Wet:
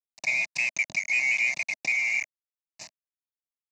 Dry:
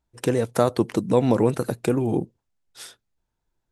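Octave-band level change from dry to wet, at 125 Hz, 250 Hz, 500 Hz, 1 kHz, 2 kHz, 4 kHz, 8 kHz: under -30 dB, under -30 dB, -30.0 dB, -18.5 dB, +17.0 dB, +1.0 dB, +2.5 dB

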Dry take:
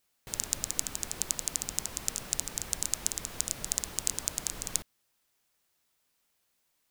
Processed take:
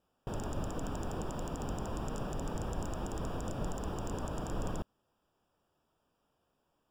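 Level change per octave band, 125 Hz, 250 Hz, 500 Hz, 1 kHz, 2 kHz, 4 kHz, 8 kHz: +9.5, +9.5, +9.0, +6.0, -5.0, -14.0, -21.0 dB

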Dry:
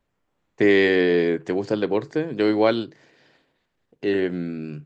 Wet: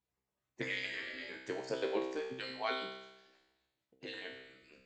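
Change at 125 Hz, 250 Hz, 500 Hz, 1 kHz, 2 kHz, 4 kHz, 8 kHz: -23.5 dB, -23.5 dB, -20.0 dB, -12.0 dB, -14.0 dB, -10.0 dB, n/a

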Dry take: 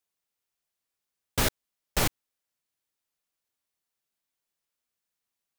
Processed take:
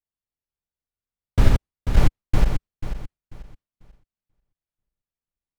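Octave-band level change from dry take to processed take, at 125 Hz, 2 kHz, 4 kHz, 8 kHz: +15.0, -0.5, -4.5, -9.5 dB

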